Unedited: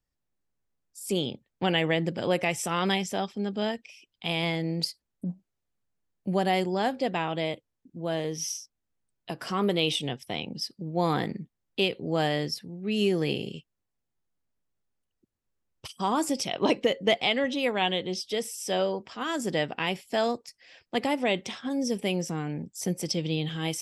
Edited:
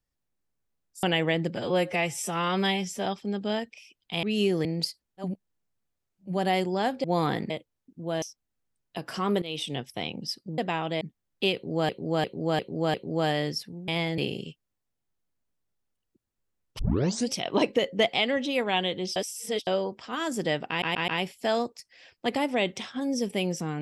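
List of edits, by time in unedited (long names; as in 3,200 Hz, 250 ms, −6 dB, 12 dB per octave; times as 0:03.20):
0:01.03–0:01.65: remove
0:02.18–0:03.18: time-stretch 1.5×
0:04.35–0:04.65: swap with 0:12.84–0:13.26
0:05.29–0:06.32: reverse, crossfade 0.24 s
0:07.04–0:07.47: swap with 0:10.91–0:11.37
0:08.19–0:08.55: remove
0:09.75–0:10.12: fade in, from −16.5 dB
0:11.90–0:12.25: repeat, 5 plays
0:15.87: tape start 0.51 s
0:18.24–0:18.75: reverse
0:19.77: stutter 0.13 s, 4 plays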